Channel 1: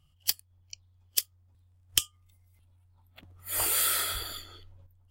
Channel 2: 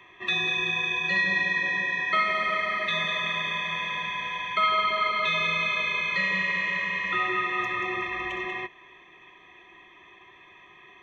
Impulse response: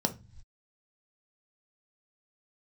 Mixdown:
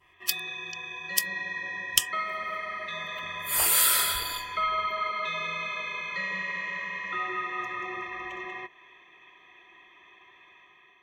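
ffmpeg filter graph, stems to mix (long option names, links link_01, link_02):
-filter_complex "[0:a]volume=-1dB[link_01];[1:a]adynamicequalizer=threshold=0.00891:dfrequency=3000:dqfactor=1.1:tfrequency=3000:tqfactor=1.1:attack=5:release=100:ratio=0.375:range=3.5:mode=cutabove:tftype=bell,volume=-8dB[link_02];[link_01][link_02]amix=inputs=2:normalize=0,dynaudnorm=framelen=750:gausssize=3:maxgain=6dB,lowshelf=frequency=400:gain=-8"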